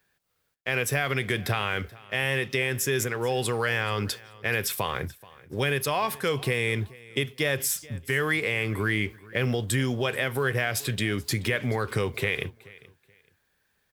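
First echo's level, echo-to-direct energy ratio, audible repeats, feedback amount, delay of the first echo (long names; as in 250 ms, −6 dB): −21.5 dB, −21.5 dB, 2, 24%, 430 ms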